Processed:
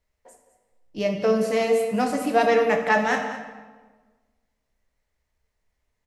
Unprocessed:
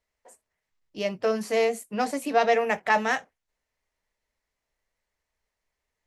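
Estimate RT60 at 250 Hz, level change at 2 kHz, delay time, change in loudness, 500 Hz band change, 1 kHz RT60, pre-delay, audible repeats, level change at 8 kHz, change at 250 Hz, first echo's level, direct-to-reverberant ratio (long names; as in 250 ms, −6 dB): 1.6 s, +2.0 dB, 207 ms, +3.5 dB, +4.0 dB, 1.3 s, 9 ms, 1, +1.0 dB, +6.5 dB, −14.5 dB, 3.5 dB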